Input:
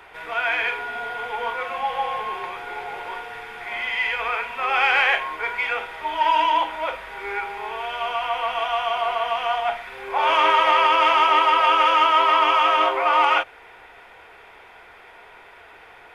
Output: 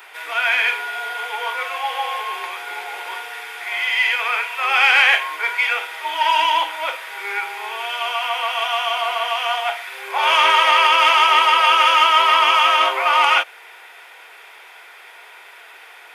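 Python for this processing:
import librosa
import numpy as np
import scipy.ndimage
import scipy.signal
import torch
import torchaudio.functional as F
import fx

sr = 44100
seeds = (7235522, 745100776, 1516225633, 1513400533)

y = scipy.signal.sosfilt(scipy.signal.butter(12, 300.0, 'highpass', fs=sr, output='sos'), x)
y = fx.tilt_eq(y, sr, slope=4.0)
y = y * 10.0 ** (1.5 / 20.0)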